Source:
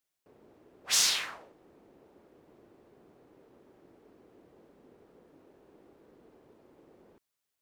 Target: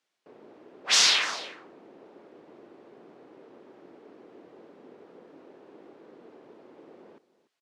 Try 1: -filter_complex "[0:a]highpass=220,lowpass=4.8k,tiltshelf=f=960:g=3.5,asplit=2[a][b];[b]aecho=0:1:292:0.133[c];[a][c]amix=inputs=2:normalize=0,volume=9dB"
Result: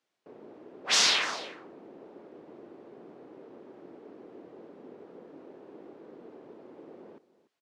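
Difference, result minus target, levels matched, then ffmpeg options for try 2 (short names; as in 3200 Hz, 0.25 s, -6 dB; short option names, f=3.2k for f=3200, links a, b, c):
1000 Hz band +3.5 dB
-filter_complex "[0:a]highpass=220,lowpass=4.8k,asplit=2[a][b];[b]aecho=0:1:292:0.133[c];[a][c]amix=inputs=2:normalize=0,volume=9dB"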